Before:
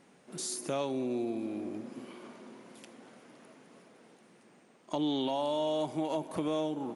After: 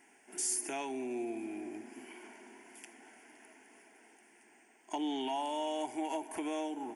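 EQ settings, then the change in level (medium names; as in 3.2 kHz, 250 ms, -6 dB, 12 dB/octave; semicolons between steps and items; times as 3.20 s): tilt shelf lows -5 dB; bass shelf 170 Hz -7 dB; static phaser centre 800 Hz, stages 8; +2.0 dB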